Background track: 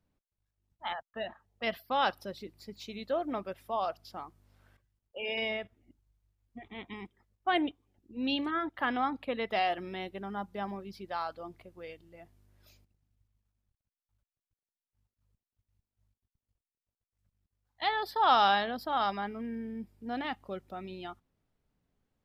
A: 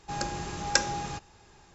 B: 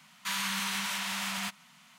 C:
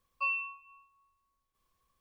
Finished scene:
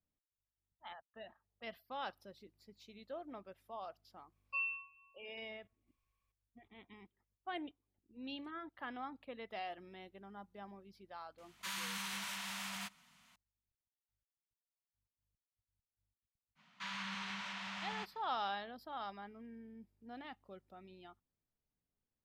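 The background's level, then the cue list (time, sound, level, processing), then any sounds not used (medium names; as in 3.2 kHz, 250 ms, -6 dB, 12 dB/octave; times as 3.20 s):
background track -14.5 dB
4.32 s: add C -13 dB + peaking EQ 2.4 kHz +13.5 dB 0.39 oct
11.38 s: add B -9.5 dB
16.55 s: add B -8 dB, fades 0.05 s + distance through air 170 m
not used: A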